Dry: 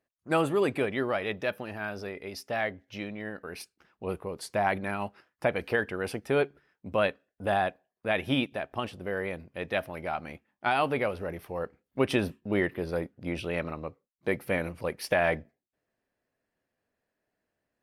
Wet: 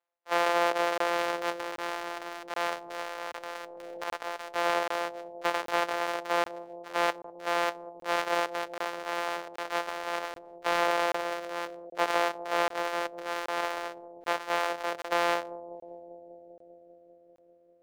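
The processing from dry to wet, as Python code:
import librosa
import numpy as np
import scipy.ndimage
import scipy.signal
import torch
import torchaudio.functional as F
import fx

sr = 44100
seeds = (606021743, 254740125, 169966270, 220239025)

y = np.r_[np.sort(x[:len(x) // 256 * 256].reshape(-1, 256), axis=1).ravel(), x[len(x) // 256 * 256:]]
y = scipy.signal.sosfilt(scipy.signal.butter(4, 530.0, 'highpass', fs=sr, output='sos'), y)
y = fx.transient(y, sr, attack_db=-2, sustain_db=10)
y = fx.leveller(y, sr, passes=1)
y = fx.lowpass(y, sr, hz=1800.0, slope=6)
y = fx.echo_bbd(y, sr, ms=197, stages=1024, feedback_pct=82, wet_db=-14)
y = fx.buffer_crackle(y, sr, first_s=0.98, period_s=0.78, block=1024, kind='zero')
y = fx.band_squash(y, sr, depth_pct=100, at=(2.72, 4.04))
y = y * 10.0 ** (3.0 / 20.0)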